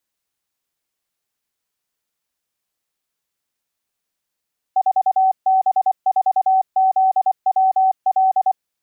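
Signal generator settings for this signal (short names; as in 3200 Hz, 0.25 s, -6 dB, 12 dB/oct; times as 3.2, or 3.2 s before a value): Morse "4B4ZWL" 24 wpm 760 Hz -11.5 dBFS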